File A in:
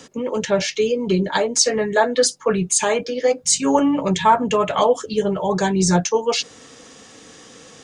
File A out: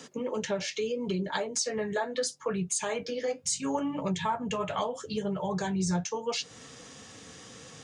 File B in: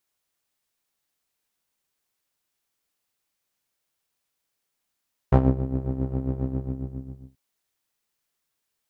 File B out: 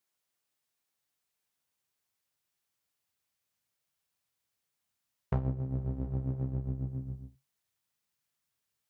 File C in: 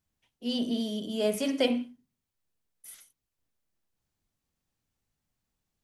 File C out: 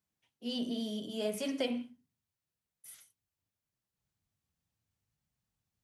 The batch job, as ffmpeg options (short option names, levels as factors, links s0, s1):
-af "highpass=96,asubboost=boost=4:cutoff=140,acompressor=threshold=0.0501:ratio=3,flanger=delay=4.4:depth=7.5:regen=-64:speed=0.75:shape=triangular"